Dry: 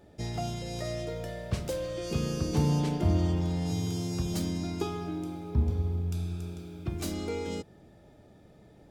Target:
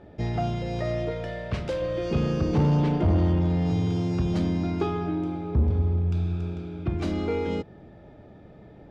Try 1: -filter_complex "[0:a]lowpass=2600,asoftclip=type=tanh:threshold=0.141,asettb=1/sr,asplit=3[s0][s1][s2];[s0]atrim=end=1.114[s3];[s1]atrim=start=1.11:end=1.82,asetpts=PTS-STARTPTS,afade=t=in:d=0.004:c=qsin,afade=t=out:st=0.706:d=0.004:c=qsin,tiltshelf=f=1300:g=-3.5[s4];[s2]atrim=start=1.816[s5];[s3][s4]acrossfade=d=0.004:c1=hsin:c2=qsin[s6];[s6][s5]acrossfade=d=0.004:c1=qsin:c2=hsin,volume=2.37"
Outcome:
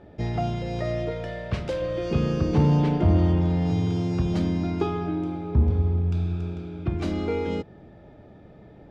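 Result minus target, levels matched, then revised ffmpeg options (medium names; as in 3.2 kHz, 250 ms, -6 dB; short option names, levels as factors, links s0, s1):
saturation: distortion -8 dB
-filter_complex "[0:a]lowpass=2600,asoftclip=type=tanh:threshold=0.0708,asettb=1/sr,asplit=3[s0][s1][s2];[s0]atrim=end=1.114[s3];[s1]atrim=start=1.11:end=1.82,asetpts=PTS-STARTPTS,afade=t=in:d=0.004:c=qsin,afade=t=out:st=0.706:d=0.004:c=qsin,tiltshelf=f=1300:g=-3.5[s4];[s2]atrim=start=1.816[s5];[s3][s4]acrossfade=d=0.004:c1=hsin:c2=qsin[s6];[s6][s5]acrossfade=d=0.004:c1=qsin:c2=hsin,volume=2.37"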